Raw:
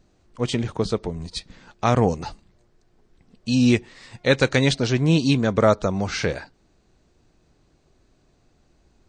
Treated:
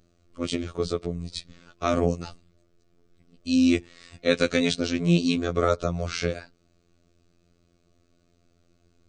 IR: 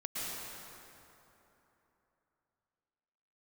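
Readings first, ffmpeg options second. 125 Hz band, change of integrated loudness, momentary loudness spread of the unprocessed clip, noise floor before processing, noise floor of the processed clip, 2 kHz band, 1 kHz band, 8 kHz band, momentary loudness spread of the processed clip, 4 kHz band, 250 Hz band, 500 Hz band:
-7.0 dB, -4.0 dB, 14 LU, -63 dBFS, -66 dBFS, -5.0 dB, -6.0 dB, -3.5 dB, 13 LU, -3.5 dB, -2.5 dB, -4.0 dB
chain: -af "afftfilt=real='hypot(re,im)*cos(PI*b)':imag='0':win_size=2048:overlap=0.75,superequalizer=9b=0.316:11b=0.631"

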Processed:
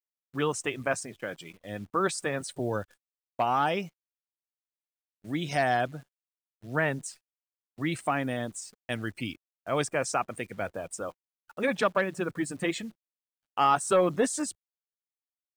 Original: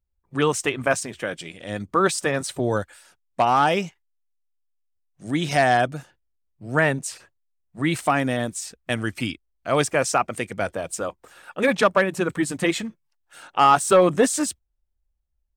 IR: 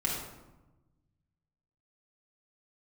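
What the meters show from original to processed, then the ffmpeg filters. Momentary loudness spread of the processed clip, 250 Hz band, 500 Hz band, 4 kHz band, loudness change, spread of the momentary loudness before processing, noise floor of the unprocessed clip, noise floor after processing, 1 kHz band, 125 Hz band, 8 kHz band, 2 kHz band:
15 LU, -7.5 dB, -7.5 dB, -8.0 dB, -7.5 dB, 15 LU, -73 dBFS, under -85 dBFS, -7.5 dB, -7.5 dB, -8.0 dB, -7.5 dB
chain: -af "afftdn=nr=13:nf=-40,agate=range=0.0251:threshold=0.00891:ratio=16:detection=peak,acrusher=bits=9:dc=4:mix=0:aa=0.000001,volume=0.422"

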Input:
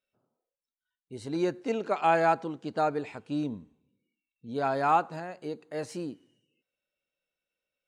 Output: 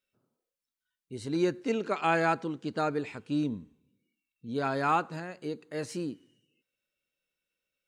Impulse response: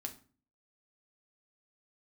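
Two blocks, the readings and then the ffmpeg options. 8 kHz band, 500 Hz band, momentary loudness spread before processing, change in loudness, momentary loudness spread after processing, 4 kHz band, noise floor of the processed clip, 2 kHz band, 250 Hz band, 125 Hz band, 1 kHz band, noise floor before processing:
no reading, -2.0 dB, 14 LU, -1.5 dB, 13 LU, +2.5 dB, under -85 dBFS, +1.5 dB, +1.5 dB, +2.5 dB, -3.5 dB, under -85 dBFS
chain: -af "equalizer=f=730:t=o:w=0.92:g=-8.5,volume=1.33"

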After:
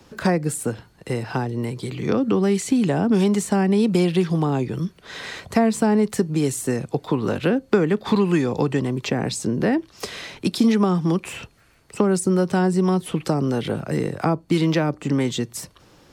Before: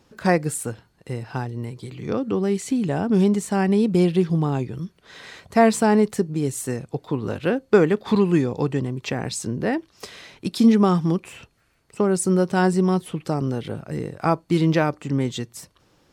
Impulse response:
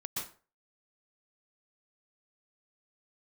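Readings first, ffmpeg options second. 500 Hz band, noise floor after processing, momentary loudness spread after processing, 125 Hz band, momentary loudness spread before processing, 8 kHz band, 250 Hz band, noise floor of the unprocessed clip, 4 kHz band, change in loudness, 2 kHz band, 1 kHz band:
0.0 dB, -55 dBFS, 10 LU, +0.5 dB, 15 LU, +1.0 dB, +1.0 dB, -62 dBFS, +3.5 dB, 0.0 dB, 0.0 dB, -1.0 dB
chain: -filter_complex "[0:a]acrossover=split=300|630[s0][s1][s2];[s0]acompressor=threshold=0.0447:ratio=4[s3];[s1]acompressor=threshold=0.02:ratio=4[s4];[s2]acompressor=threshold=0.0158:ratio=4[s5];[s3][s4][s5]amix=inputs=3:normalize=0,acrossover=split=140[s6][s7];[s6]alimiter=level_in=8.41:limit=0.0631:level=0:latency=1,volume=0.119[s8];[s8][s7]amix=inputs=2:normalize=0,volume=2.51"

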